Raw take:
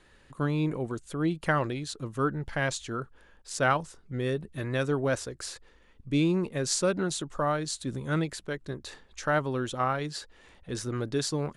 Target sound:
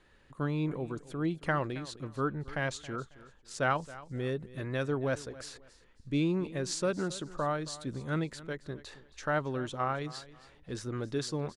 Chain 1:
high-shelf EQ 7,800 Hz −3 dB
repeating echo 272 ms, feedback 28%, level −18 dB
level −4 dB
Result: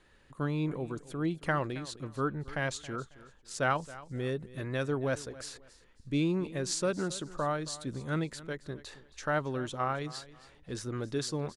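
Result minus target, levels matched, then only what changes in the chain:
8,000 Hz band +3.0 dB
change: high-shelf EQ 7,800 Hz −9.5 dB

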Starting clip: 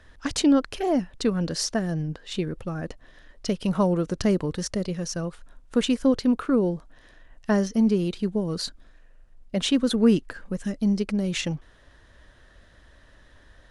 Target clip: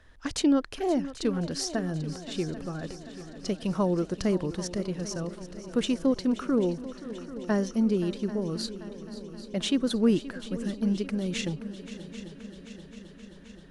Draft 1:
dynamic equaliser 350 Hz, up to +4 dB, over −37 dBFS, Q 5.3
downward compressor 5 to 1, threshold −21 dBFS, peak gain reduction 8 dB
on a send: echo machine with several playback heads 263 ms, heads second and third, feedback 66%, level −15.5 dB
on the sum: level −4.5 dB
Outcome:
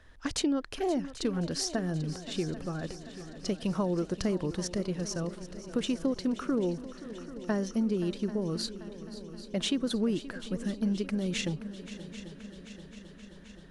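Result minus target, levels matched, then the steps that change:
downward compressor: peak gain reduction +8 dB
remove: downward compressor 5 to 1, threshold −21 dBFS, peak gain reduction 8 dB

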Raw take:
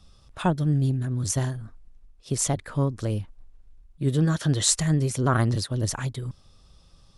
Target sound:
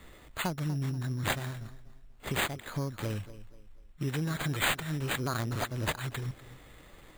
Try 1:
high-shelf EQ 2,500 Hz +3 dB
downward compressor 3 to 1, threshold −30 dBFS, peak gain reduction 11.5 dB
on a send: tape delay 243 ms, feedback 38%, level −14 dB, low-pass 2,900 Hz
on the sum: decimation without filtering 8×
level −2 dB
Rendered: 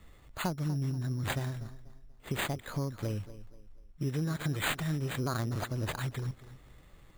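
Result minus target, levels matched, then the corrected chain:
4,000 Hz band −3.0 dB
high-shelf EQ 2,500 Hz +14.5 dB
downward compressor 3 to 1, threshold −30 dBFS, peak gain reduction 18.5 dB
on a send: tape delay 243 ms, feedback 38%, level −14 dB, low-pass 2,900 Hz
on the sum: decimation without filtering 8×
level −2 dB

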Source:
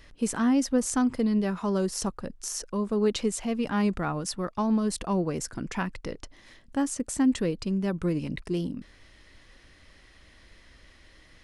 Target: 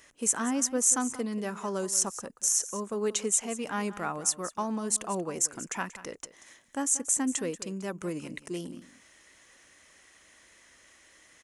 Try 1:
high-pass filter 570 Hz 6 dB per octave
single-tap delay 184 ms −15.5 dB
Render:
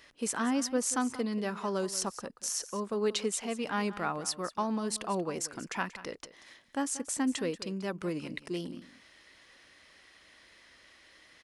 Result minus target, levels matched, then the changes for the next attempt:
4,000 Hz band +5.5 dB
add after high-pass filter: high shelf with overshoot 5,600 Hz +6 dB, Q 3

